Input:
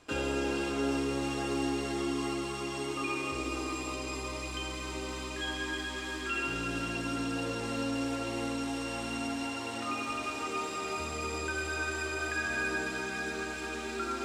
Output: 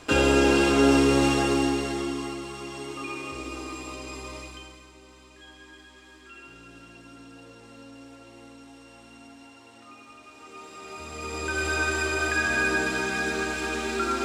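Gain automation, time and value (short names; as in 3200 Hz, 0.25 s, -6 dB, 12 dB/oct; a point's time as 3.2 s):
1.25 s +12 dB
2.39 s -1 dB
4.38 s -1 dB
4.92 s -13.5 dB
10.26 s -13.5 dB
11 s -4 dB
11.67 s +8 dB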